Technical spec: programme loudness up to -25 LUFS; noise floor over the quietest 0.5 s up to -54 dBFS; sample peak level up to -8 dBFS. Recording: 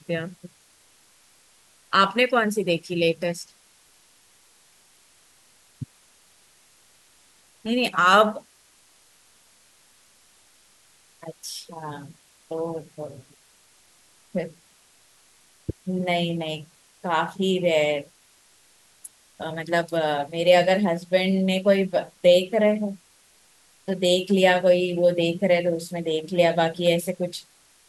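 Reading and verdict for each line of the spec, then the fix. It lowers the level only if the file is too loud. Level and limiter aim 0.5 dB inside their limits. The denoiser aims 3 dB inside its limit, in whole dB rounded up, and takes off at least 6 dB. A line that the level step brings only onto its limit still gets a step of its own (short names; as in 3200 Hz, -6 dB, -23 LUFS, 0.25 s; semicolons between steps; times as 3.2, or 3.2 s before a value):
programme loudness -22.5 LUFS: fail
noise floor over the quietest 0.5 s -58 dBFS: OK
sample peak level -5.5 dBFS: fail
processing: gain -3 dB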